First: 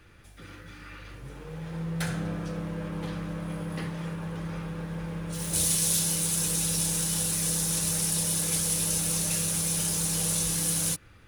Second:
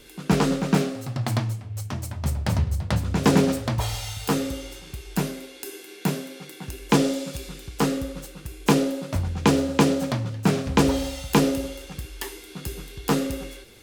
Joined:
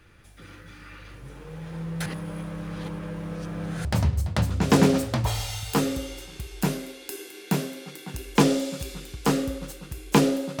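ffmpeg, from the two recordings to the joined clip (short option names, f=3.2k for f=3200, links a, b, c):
-filter_complex "[0:a]apad=whole_dur=10.6,atrim=end=10.6,asplit=2[a][b];[a]atrim=end=2.062[c];[b]atrim=start=2.058:end=3.852,asetpts=PTS-STARTPTS,areverse[d];[1:a]atrim=start=2.388:end=9.14[e];[c][d]acrossfade=d=0.004:c1=hsin:c2=hsin[f];[f][e]acrossfade=d=0.004:c1=hsin:c2=hsin"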